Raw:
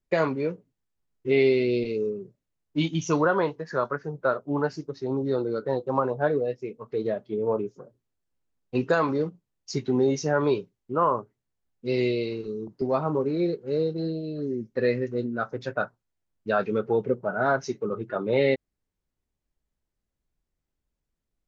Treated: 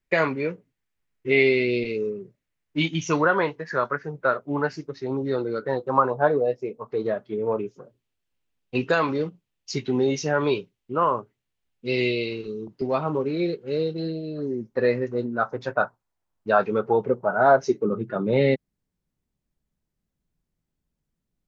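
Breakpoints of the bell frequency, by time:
bell +9.5 dB 1.2 oct
5.59 s 2100 Hz
6.63 s 620 Hz
7.71 s 2800 Hz
14.02 s 2800 Hz
14.44 s 930 Hz
17.39 s 930 Hz
18.04 s 170 Hz

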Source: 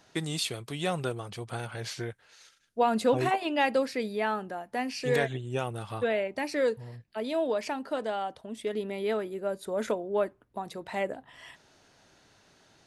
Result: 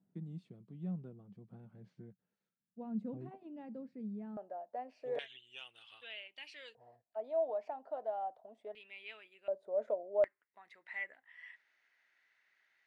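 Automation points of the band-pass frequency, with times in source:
band-pass, Q 6.9
190 Hz
from 4.37 s 620 Hz
from 5.19 s 3000 Hz
from 6.75 s 700 Hz
from 8.75 s 2600 Hz
from 9.48 s 610 Hz
from 10.24 s 2000 Hz

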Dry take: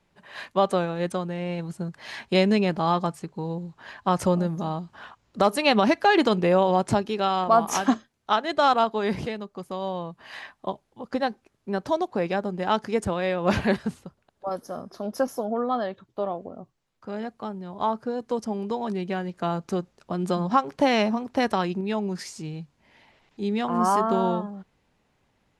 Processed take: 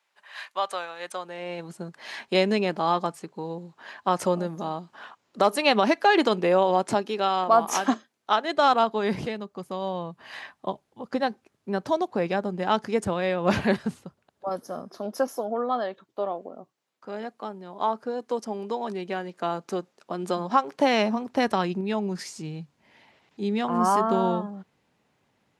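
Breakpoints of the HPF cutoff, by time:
0.99 s 960 Hz
1.71 s 250 Hz
8.42 s 250 Hz
8.87 s 97 Hz
14.51 s 97 Hz
15.27 s 280 Hz
20.69 s 280 Hz
21.47 s 110 Hz

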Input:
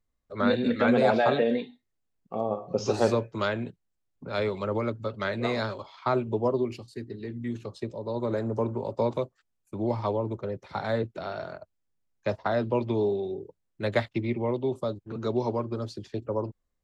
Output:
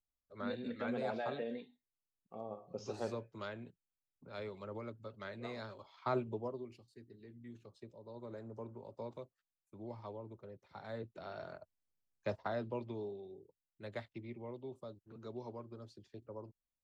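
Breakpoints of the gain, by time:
5.68 s -16.5 dB
6.17 s -8.5 dB
6.6 s -19 dB
10.75 s -19 dB
11.51 s -9.5 dB
12.3 s -9.5 dB
13.15 s -18.5 dB

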